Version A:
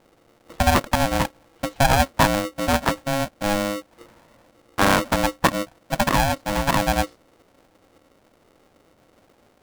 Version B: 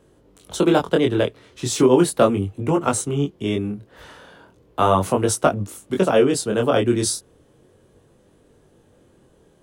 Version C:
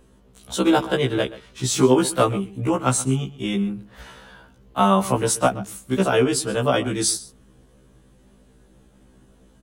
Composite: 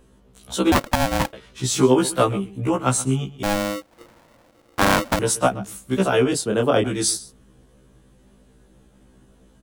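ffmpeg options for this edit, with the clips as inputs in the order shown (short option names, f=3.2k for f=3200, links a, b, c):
-filter_complex "[0:a]asplit=2[a][b];[2:a]asplit=4[c][d][e][f];[c]atrim=end=0.722[g];[a]atrim=start=0.718:end=1.332[h];[d]atrim=start=1.328:end=3.432[i];[b]atrim=start=3.428:end=5.192[j];[e]atrim=start=5.188:end=6.332[k];[1:a]atrim=start=6.328:end=6.842[l];[f]atrim=start=6.838[m];[g][h]acrossfade=d=0.004:c1=hsin:c2=hsin[n];[n][i]acrossfade=d=0.004:c1=hsin:c2=hsin[o];[o][j]acrossfade=d=0.004:c1=hsin:c2=hsin[p];[p][k]acrossfade=d=0.004:c1=hsin:c2=hsin[q];[q][l]acrossfade=d=0.004:c1=hsin:c2=hsin[r];[r][m]acrossfade=d=0.004:c1=hsin:c2=hsin"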